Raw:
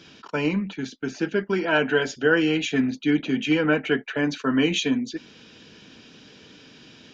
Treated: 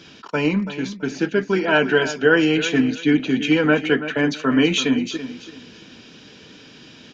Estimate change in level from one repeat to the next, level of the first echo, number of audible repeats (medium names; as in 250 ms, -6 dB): -11.5 dB, -12.5 dB, 2